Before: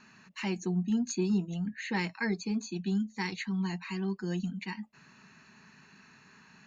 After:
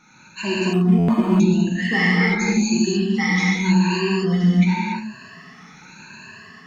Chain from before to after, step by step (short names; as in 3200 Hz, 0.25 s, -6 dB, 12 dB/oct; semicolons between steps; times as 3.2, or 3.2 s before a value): moving spectral ripple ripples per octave 1.4, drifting +0.88 Hz, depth 20 dB; AGC gain up to 4 dB; non-linear reverb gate 0.31 s flat, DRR -6.5 dB; stuck buffer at 0.98, samples 512, times 8; 0.73–1.4 decimation joined by straight lines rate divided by 8×